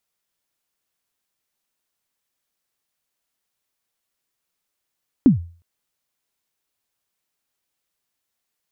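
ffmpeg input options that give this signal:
ffmpeg -f lavfi -i "aevalsrc='0.562*pow(10,-3*t/0.4)*sin(2*PI*(300*0.125/log(85/300)*(exp(log(85/300)*min(t,0.125)/0.125)-1)+85*max(t-0.125,0)))':duration=0.36:sample_rate=44100" out.wav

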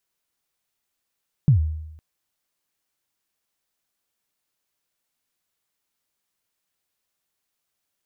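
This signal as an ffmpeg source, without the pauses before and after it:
ffmpeg -f lavfi -i "aevalsrc='0.335*pow(10,-3*t/0.9)*sin(2*PI*(160*0.111/log(78/160)*(exp(log(78/160)*min(t,0.111)/0.111)-1)+78*max(t-0.111,0)))':duration=0.51:sample_rate=44100" out.wav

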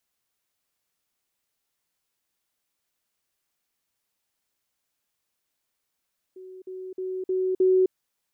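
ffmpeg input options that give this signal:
ffmpeg -f lavfi -i "aevalsrc='pow(10,(-40+6*floor(t/0.31))/20)*sin(2*PI*373*t)*clip(min(mod(t,0.31),0.26-mod(t,0.31))/0.005,0,1)':duration=1.55:sample_rate=44100" out.wav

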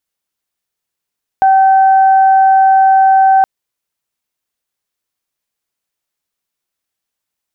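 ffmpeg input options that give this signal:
ffmpeg -f lavfi -i "aevalsrc='0.562*sin(2*PI*770*t)+0.0794*sin(2*PI*1540*t)':duration=2.02:sample_rate=44100" out.wav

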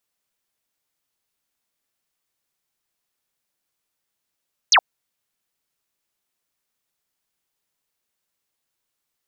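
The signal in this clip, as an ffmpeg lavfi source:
ffmpeg -f lavfi -i "aevalsrc='0.316*clip(t/0.002,0,1)*clip((0.07-t)/0.002,0,1)*sin(2*PI*6900*0.07/log(630/6900)*(exp(log(630/6900)*t/0.07)-1))':duration=0.07:sample_rate=44100" out.wav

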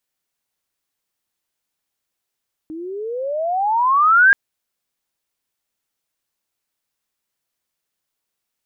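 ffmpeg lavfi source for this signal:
ffmpeg -f lavfi -i "aevalsrc='pow(10,(-7+21*(t/1.63-1))/20)*sin(2*PI*308*1.63/(29*log(2)/12)*(exp(29*log(2)/12*t/1.63)-1))':duration=1.63:sample_rate=44100" out.wav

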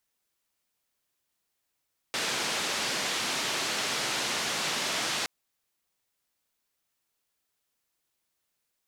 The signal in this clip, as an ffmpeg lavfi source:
ffmpeg -f lavfi -i "anoisesrc=color=white:duration=3.12:sample_rate=44100:seed=1,highpass=frequency=160,lowpass=frequency=5300,volume=-19.7dB" out.wav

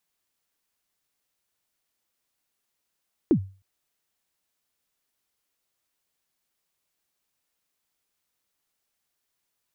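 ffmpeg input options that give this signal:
ffmpeg -f lavfi -i "aevalsrc='0.251*pow(10,-3*t/0.35)*sin(2*PI*(380*0.083/log(96/380)*(exp(log(96/380)*min(t,0.083)/0.083)-1)+96*max(t-0.083,0)))':duration=0.31:sample_rate=44100" out.wav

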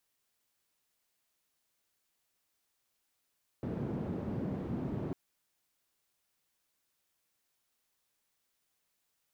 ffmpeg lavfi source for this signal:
ffmpeg -f lavfi -i "anoisesrc=color=white:duration=1.5:sample_rate=44100:seed=1,highpass=frequency=120,lowpass=frequency=220,volume=-9.2dB" out.wav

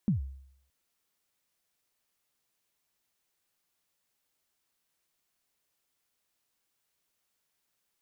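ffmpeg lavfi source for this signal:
ffmpeg -f lavfi -i "aevalsrc='0.0944*pow(10,-3*t/0.69)*sin(2*PI*(230*0.125/log(67/230)*(exp(log(67/230)*min(t,0.125)/0.125)-1)+67*max(t-0.125,0)))':duration=0.62:sample_rate=44100" out.wav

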